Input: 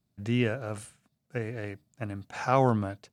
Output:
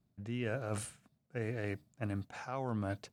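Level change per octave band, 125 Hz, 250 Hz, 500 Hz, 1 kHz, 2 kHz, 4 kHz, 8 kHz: -7.5 dB, -8.5 dB, -9.5 dB, -13.5 dB, -7.0 dB, -9.0 dB, 0.0 dB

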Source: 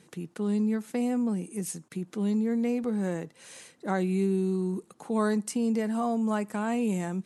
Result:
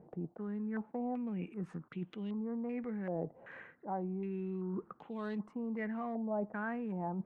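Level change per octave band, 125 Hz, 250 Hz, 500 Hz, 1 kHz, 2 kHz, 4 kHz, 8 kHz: -9.5 dB, -11.0 dB, -9.5 dB, -7.5 dB, -6.5 dB, under -15 dB, under -35 dB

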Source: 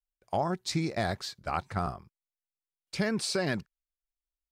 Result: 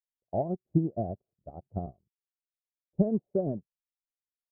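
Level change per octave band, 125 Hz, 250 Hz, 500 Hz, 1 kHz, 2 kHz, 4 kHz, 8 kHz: +2.0 dB, +2.5 dB, +1.0 dB, -7.5 dB, under -40 dB, under -40 dB, under -40 dB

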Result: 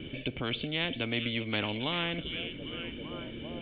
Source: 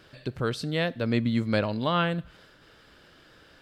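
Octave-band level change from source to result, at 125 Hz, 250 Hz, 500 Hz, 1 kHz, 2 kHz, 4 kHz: -8.0 dB, -6.5 dB, -7.5 dB, -8.5 dB, -1.0 dB, +4.0 dB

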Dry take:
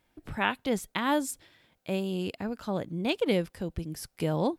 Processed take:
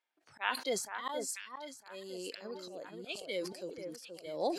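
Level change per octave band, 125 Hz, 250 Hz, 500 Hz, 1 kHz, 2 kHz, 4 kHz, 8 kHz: -22.5 dB, -15.0 dB, -7.0 dB, -7.0 dB, -6.5 dB, -4.5 dB, -0.5 dB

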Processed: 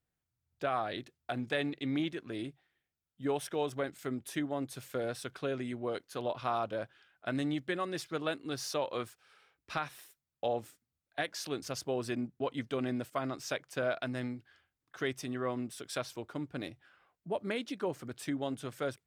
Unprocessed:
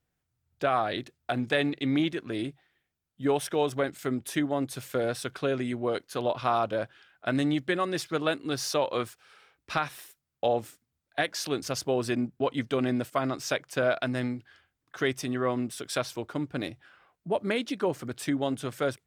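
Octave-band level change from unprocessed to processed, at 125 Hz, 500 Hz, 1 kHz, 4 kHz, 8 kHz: -7.0 dB, -7.0 dB, -7.0 dB, -7.0 dB, -7.0 dB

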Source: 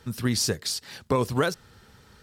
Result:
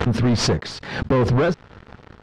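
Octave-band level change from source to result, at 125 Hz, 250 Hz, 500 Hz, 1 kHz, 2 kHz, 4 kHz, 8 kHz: +10.0 dB, +8.0 dB, +6.5 dB, +4.5 dB, +5.0 dB, +2.0 dB, -2.5 dB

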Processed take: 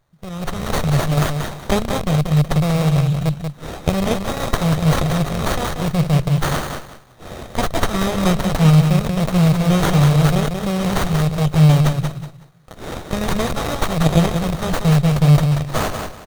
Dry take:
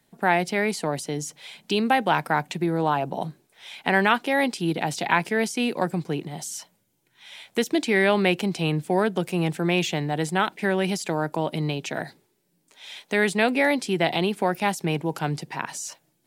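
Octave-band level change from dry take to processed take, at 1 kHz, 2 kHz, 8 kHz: +1.5 dB, -2.5 dB, +5.0 dB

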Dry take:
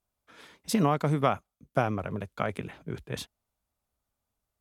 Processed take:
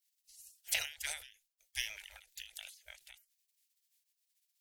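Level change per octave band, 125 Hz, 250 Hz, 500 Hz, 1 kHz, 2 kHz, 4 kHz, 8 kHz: under -35 dB, under -40 dB, -30.5 dB, -28.0 dB, -3.5 dB, +1.5 dB, +2.0 dB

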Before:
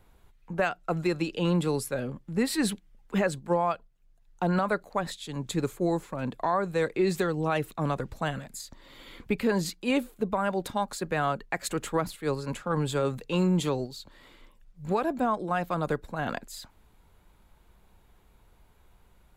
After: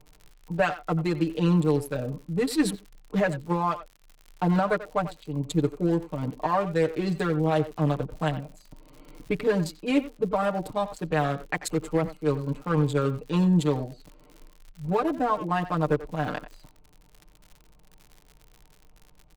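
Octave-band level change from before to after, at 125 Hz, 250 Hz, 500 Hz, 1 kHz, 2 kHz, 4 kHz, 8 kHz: +5.0 dB, +3.0 dB, +2.0 dB, +1.5 dB, +0.5 dB, -1.5 dB, -3.0 dB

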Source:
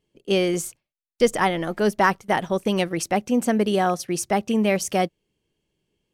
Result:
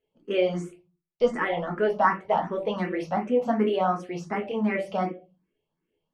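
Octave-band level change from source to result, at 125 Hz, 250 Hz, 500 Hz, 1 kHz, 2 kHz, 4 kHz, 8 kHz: -5.5 dB, -5.5 dB, -2.5 dB, -2.5 dB, -5.0 dB, -10.0 dB, under -20 dB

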